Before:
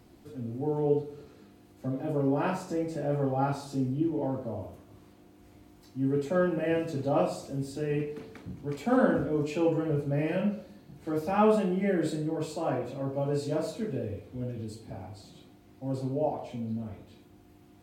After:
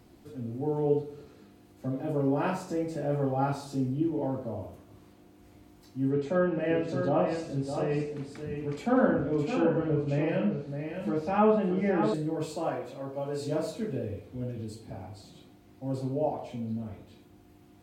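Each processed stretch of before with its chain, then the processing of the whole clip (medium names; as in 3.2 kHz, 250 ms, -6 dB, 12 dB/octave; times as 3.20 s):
6.09–12.14 s: low-pass that closes with the level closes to 2.5 kHz, closed at -21 dBFS + delay 613 ms -7 dB
12.69–13.40 s: bass shelf 340 Hz -9.5 dB + band-stop 2.6 kHz, Q 28
whole clip: none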